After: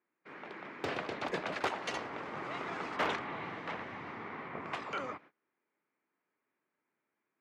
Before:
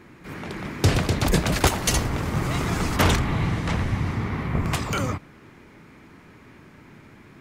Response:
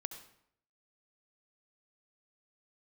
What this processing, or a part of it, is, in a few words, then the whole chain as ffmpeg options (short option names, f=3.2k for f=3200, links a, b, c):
walkie-talkie: -af "highpass=420,lowpass=2.6k,asoftclip=type=hard:threshold=-15.5dB,agate=range=-24dB:threshold=-47dB:ratio=16:detection=peak,volume=-8.5dB"